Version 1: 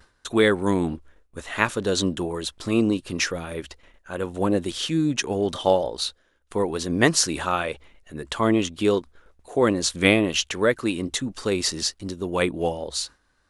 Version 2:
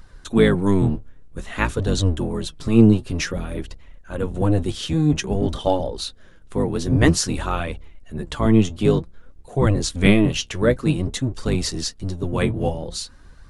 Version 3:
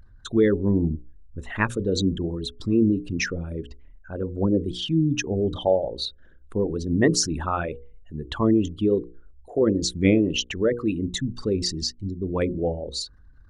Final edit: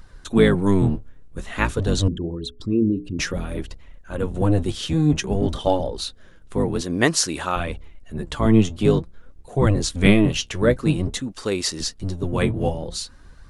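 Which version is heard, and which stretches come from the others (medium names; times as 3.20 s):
2
2.08–3.19 s: from 3
6.81–7.56 s: from 1
11.20–11.80 s: from 1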